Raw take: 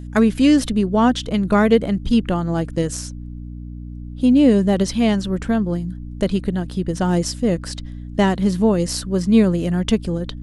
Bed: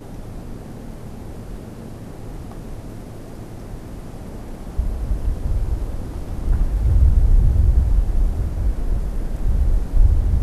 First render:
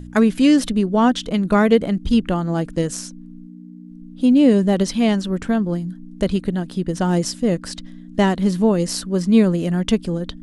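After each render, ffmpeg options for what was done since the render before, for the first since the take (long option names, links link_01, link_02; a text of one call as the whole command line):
ffmpeg -i in.wav -af "bandreject=frequency=60:width_type=h:width=4,bandreject=frequency=120:width_type=h:width=4" out.wav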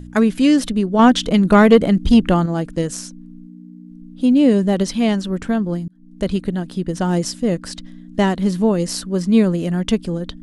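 ffmpeg -i in.wav -filter_complex "[0:a]asettb=1/sr,asplit=3[link_01][link_02][link_03];[link_01]atrim=end=0.994[link_04];[link_02]atrim=start=0.99:end=2.46,asetpts=PTS-STARTPTS,afade=type=in:duration=0.004:curve=qsin,afade=type=out:start_time=1.466:duration=0.004:curve=qsin,acontrast=51[link_05];[link_03]atrim=start=2.456[link_06];[link_04][link_05]acrossfade=duration=0.004:curve1=hsin:curve2=qsin[link_07];[link_07][link_06]acrossfade=duration=0.004:curve1=qsin:curve2=hsin,asplit=2[link_08][link_09];[link_08]atrim=end=5.88,asetpts=PTS-STARTPTS,afade=type=out:start_time=5.876:duration=0.004:curve=hsin[link_10];[link_09]atrim=start=5.88,asetpts=PTS-STARTPTS,afade=type=in:duration=0.42[link_11];[link_10][link_11]concat=n=2:v=0:a=1" out.wav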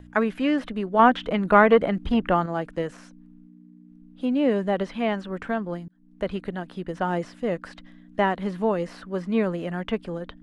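ffmpeg -i in.wav -filter_complex "[0:a]acrossover=split=2900[link_01][link_02];[link_02]acompressor=threshold=-42dB:ratio=4:attack=1:release=60[link_03];[link_01][link_03]amix=inputs=2:normalize=0,acrossover=split=510 3000:gain=0.251 1 0.2[link_04][link_05][link_06];[link_04][link_05][link_06]amix=inputs=3:normalize=0" out.wav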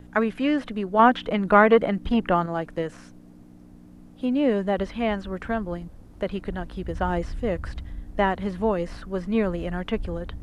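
ffmpeg -i in.wav -i bed.wav -filter_complex "[1:a]volume=-19.5dB[link_01];[0:a][link_01]amix=inputs=2:normalize=0" out.wav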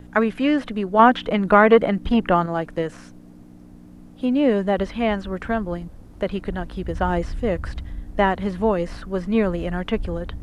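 ffmpeg -i in.wav -af "volume=3.5dB,alimiter=limit=-1dB:level=0:latency=1" out.wav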